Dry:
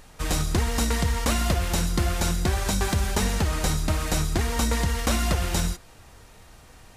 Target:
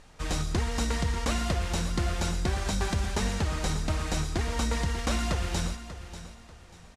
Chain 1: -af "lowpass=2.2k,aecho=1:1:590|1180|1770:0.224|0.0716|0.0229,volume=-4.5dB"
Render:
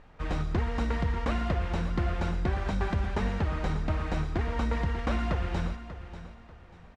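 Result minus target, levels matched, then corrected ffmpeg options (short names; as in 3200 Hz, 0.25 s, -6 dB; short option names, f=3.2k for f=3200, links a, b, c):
8000 Hz band -18.0 dB
-af "lowpass=7.8k,aecho=1:1:590|1180|1770:0.224|0.0716|0.0229,volume=-4.5dB"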